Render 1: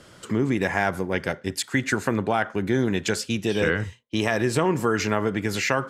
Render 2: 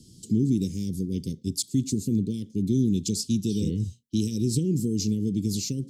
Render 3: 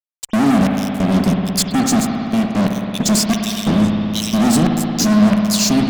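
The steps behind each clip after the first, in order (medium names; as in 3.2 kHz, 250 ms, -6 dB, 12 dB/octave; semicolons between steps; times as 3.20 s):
inverse Chebyshev band-stop 670–1600 Hz, stop band 70 dB; peaking EQ 480 Hz +15 dB 1.2 oct; trim +1 dB
LFO high-pass square 1.5 Hz 210–2500 Hz; fuzz box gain 33 dB, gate -40 dBFS; spring tank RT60 3.1 s, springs 57 ms, chirp 50 ms, DRR 1.5 dB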